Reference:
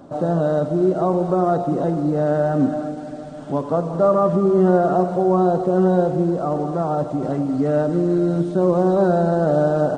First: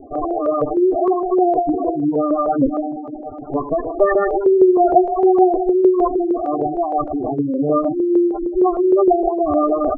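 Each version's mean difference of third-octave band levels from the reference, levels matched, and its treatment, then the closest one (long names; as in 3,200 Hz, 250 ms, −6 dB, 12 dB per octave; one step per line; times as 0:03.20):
11.5 dB: lower of the sound and its delayed copy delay 2.8 ms
gate on every frequency bin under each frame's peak −10 dB strong
auto-filter low-pass saw up 6.5 Hz 460–2,900 Hz
level +3.5 dB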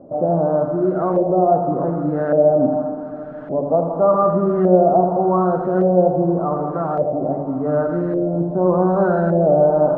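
5.5 dB: feedback echo with a low-pass in the loop 82 ms, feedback 65%, low-pass 2,000 Hz, level −7.5 dB
auto-filter low-pass saw up 0.86 Hz 540–1,800 Hz
hum removal 141.2 Hz, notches 17
level −2.5 dB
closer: second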